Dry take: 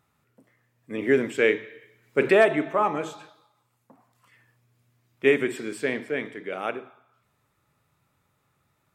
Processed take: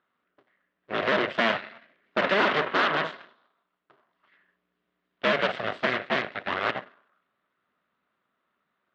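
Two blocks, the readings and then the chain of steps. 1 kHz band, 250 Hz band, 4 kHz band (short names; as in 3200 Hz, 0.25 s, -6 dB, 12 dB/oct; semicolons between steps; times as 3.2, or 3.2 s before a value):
+2.5 dB, -5.0 dB, +8.5 dB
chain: cycle switcher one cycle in 2, inverted; limiter -16.5 dBFS, peak gain reduction 8.5 dB; added harmonics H 3 -21 dB, 7 -27 dB, 8 -11 dB, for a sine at -16.5 dBFS; speaker cabinet 310–3200 Hz, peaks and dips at 320 Hz -5 dB, 480 Hz -6 dB, 840 Hz -9 dB, 2400 Hz -7 dB; gain +6.5 dB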